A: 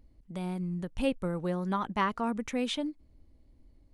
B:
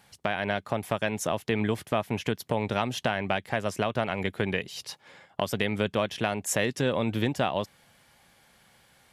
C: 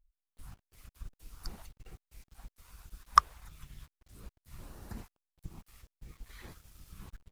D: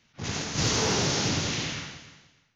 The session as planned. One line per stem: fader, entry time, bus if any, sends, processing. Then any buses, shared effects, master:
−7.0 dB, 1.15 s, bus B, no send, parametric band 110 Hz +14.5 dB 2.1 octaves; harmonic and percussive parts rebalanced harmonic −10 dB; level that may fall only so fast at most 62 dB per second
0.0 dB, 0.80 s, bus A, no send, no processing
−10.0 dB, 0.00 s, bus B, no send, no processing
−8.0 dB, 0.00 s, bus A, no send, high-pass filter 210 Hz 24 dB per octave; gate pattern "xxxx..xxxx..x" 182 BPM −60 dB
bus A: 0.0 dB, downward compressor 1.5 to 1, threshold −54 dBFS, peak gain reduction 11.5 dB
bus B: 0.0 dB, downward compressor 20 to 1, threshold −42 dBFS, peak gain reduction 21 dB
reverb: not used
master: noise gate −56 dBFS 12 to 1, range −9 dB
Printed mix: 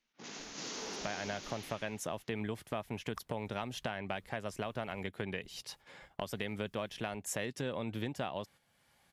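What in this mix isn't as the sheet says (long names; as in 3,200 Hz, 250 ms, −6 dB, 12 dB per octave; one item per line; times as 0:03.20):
stem A: muted
stem C −10.0 dB → −17.5 dB
stem D: missing gate pattern "xxxx..xxxx..x" 182 BPM −60 dB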